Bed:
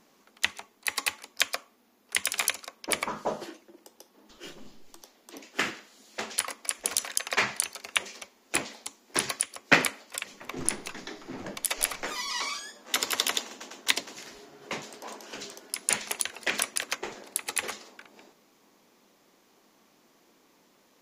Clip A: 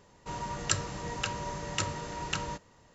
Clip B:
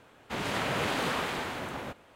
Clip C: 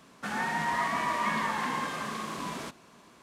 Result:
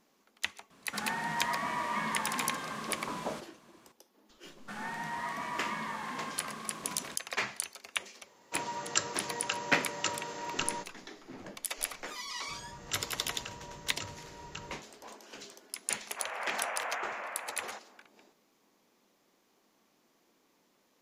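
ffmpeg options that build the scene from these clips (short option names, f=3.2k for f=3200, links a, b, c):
-filter_complex "[3:a]asplit=2[a][b];[1:a]asplit=2[c][d];[0:a]volume=-7.5dB[e];[c]highpass=280[f];[2:a]highpass=f=320:t=q:w=0.5412,highpass=f=320:t=q:w=1.307,lowpass=f=2.3k:t=q:w=0.5176,lowpass=f=2.3k:t=q:w=0.7071,lowpass=f=2.3k:t=q:w=1.932,afreqshift=220[g];[a]atrim=end=3.22,asetpts=PTS-STARTPTS,volume=-4.5dB,afade=t=in:d=0.004:c=hsin,afade=t=out:st=3.216:d=0.004:c=hsin,adelay=700[h];[b]atrim=end=3.22,asetpts=PTS-STARTPTS,volume=-8dB,afade=t=in:d=0.004:c=hsin,afade=t=out:st=3.216:d=0.004:c=hsin,adelay=196245S[i];[f]atrim=end=2.94,asetpts=PTS-STARTPTS,volume=-0.5dB,afade=t=in:d=0.004:c=hsin,afade=t=out:st=2.936:d=0.004:c=hsin,adelay=364266S[j];[d]atrim=end=2.94,asetpts=PTS-STARTPTS,volume=-11dB,afade=t=in:d=0.004:c=hsin,afade=t=out:st=2.936:d=0.004:c=hsin,adelay=12220[k];[g]atrim=end=2.15,asetpts=PTS-STARTPTS,volume=-5dB,afade=t=in:d=0.004:c=hsin,afade=t=out:st=2.146:d=0.004:c=hsin,adelay=15860[l];[e][h][i][j][k][l]amix=inputs=6:normalize=0"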